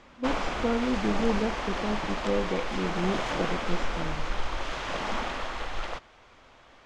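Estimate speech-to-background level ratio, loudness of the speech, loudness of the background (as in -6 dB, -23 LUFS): 0.5 dB, -32.0 LUFS, -32.5 LUFS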